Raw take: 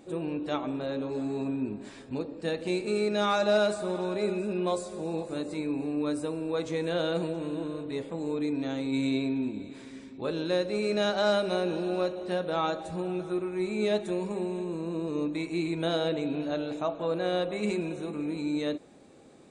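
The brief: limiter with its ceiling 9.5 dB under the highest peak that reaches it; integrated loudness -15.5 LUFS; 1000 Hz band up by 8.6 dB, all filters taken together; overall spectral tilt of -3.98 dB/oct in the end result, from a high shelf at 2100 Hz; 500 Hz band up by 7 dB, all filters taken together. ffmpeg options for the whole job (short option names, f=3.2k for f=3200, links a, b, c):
-af "equalizer=f=500:t=o:g=6,equalizer=f=1k:t=o:g=7.5,highshelf=f=2.1k:g=8.5,volume=12dB,alimiter=limit=-5dB:level=0:latency=1"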